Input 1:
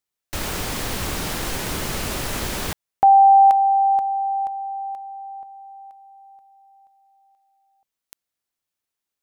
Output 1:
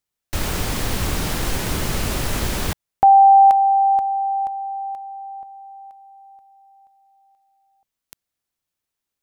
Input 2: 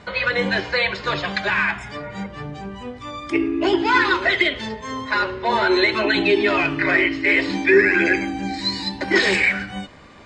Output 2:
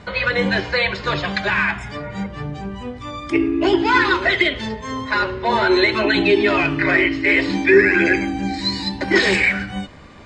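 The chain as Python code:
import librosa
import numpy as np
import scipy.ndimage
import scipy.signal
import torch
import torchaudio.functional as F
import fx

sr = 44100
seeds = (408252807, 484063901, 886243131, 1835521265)

y = fx.low_shelf(x, sr, hz=190.0, db=6.5)
y = y * 10.0 ** (1.0 / 20.0)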